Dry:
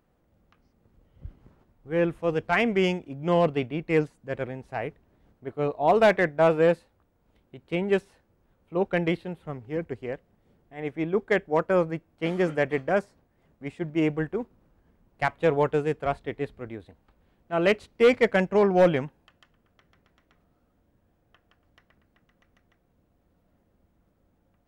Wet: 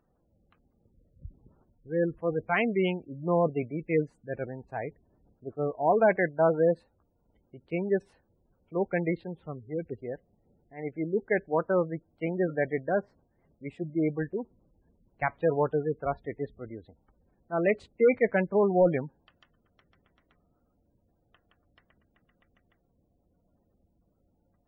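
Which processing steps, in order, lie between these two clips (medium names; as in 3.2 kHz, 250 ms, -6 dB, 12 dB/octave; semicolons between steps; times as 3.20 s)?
spectral gate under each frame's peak -20 dB strong; 12.83–14.00 s: low-pass that closes with the level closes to 1.9 kHz, closed at -21 dBFS; trim -3 dB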